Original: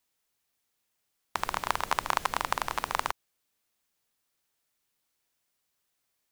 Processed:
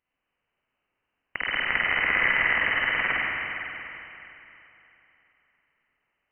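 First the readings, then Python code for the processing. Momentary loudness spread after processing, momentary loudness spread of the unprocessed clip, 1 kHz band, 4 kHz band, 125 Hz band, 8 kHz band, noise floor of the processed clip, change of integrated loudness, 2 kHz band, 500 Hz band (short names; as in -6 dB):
18 LU, 8 LU, -3.0 dB, +6.0 dB, +3.5 dB, under -35 dB, -82 dBFS, +8.0 dB, +14.5 dB, +2.5 dB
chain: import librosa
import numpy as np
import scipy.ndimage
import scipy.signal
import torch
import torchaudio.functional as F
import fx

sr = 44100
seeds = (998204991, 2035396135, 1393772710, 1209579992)

y = fx.rev_spring(x, sr, rt60_s=3.2, pass_ms=(46, 50), chirp_ms=45, drr_db=-8.0)
y = fx.freq_invert(y, sr, carrier_hz=3000)
y = y * 10.0 ** (-1.5 / 20.0)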